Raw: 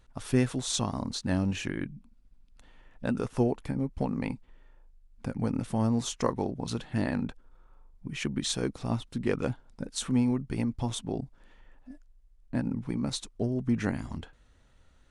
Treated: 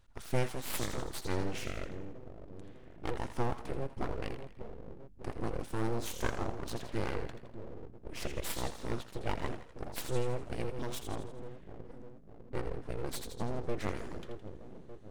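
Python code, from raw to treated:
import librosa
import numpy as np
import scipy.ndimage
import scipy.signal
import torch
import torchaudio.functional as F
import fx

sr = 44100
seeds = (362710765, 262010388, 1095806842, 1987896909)

y = fx.echo_split(x, sr, split_hz=400.0, low_ms=602, high_ms=82, feedback_pct=52, wet_db=-9.0)
y = np.abs(y)
y = y * 10.0 ** (-4.0 / 20.0)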